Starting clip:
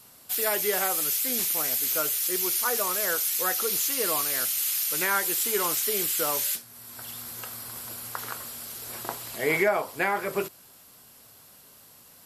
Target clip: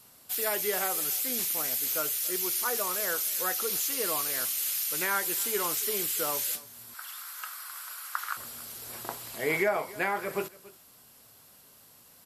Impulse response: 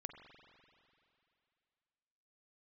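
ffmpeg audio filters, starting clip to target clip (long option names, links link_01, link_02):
-filter_complex "[0:a]asettb=1/sr,asplit=3[link_01][link_02][link_03];[link_01]atrim=end=6.944[link_04];[link_02]atrim=start=6.94:end=8.37,asetpts=PTS-STARTPTS,afade=type=in:duration=0.004:curve=qsin,afade=type=out:start_time=1.426:duration=0.004:curve=qsin,highpass=frequency=1300:width_type=q:width=2.8[link_05];[link_03]atrim=start=8.366[link_06];[link_04][link_05]acrossfade=duration=0.004:curve1=hsin:curve2=qsin[link_07];[link_07][link_06]acrossfade=duration=0.004:curve1=qsin:curve2=hsin,asplit=2[link_08][link_09];[link_09]aecho=0:1:282:0.0944[link_10];[link_08][link_10]amix=inputs=2:normalize=0,volume=-3.5dB"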